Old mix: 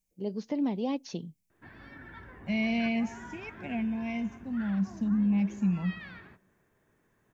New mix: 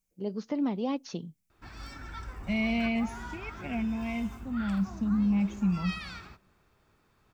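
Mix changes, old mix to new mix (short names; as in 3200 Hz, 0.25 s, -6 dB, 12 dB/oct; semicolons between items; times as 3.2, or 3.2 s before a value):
background: remove speaker cabinet 120–2800 Hz, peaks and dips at 810 Hz -5 dB, 1700 Hz +6 dB, 2500 Hz -8 dB; master: add bell 1300 Hz +11 dB 0.39 oct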